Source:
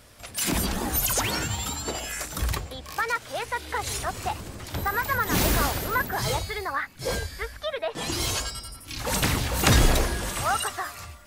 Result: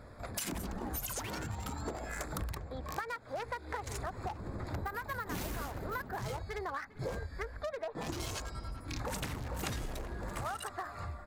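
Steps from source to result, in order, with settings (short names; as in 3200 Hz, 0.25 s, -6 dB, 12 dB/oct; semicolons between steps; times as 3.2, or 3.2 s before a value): Wiener smoothing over 15 samples; compressor 16:1, threshold -38 dBFS, peak gain reduction 24.5 dB; speakerphone echo 0.4 s, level -19 dB; gain +3 dB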